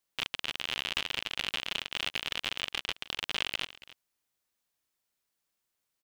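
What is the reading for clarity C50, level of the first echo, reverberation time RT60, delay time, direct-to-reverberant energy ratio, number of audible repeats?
no reverb audible, −18.0 dB, no reverb audible, 282 ms, no reverb audible, 1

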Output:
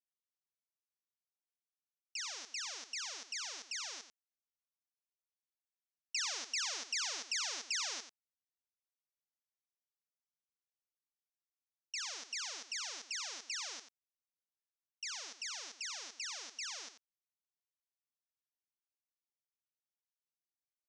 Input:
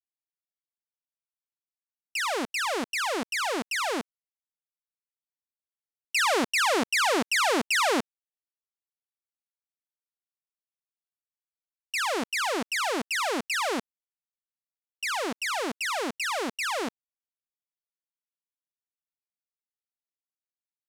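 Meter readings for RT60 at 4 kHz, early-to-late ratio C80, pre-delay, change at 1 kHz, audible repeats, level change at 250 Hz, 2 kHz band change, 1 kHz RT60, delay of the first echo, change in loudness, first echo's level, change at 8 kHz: no reverb audible, no reverb audible, no reverb audible, −23.5 dB, 1, −34.5 dB, −17.0 dB, no reverb audible, 89 ms, −12.5 dB, −11.0 dB, −5.5 dB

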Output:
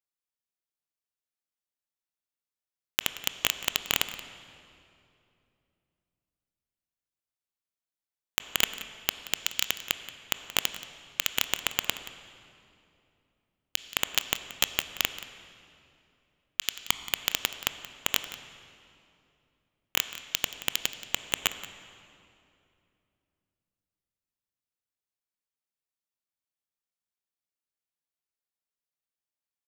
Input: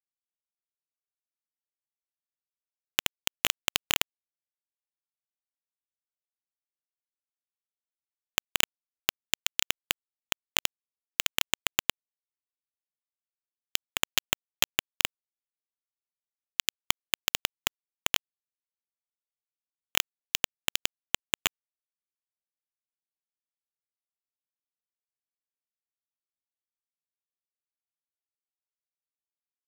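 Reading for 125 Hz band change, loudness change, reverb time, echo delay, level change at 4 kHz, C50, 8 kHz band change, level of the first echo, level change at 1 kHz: +0.5 dB, +0.5 dB, 2.7 s, 178 ms, +0.5 dB, 10.5 dB, 0.0 dB, −16.5 dB, +0.5 dB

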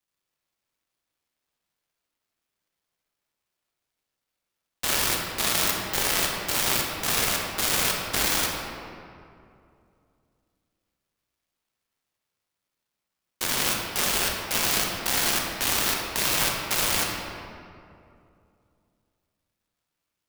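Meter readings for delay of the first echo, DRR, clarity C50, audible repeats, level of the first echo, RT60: no echo audible, 0.0 dB, 1.5 dB, no echo audible, no echo audible, 2.5 s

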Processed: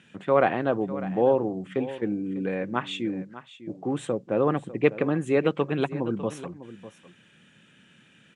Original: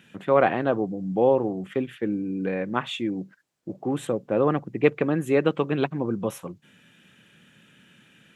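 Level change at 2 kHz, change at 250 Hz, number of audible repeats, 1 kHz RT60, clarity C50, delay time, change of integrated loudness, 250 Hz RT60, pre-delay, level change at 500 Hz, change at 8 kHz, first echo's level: −1.5 dB, −1.5 dB, 1, no reverb audible, no reverb audible, 600 ms, −1.5 dB, no reverb audible, no reverb audible, −1.5 dB, −2.5 dB, −15.0 dB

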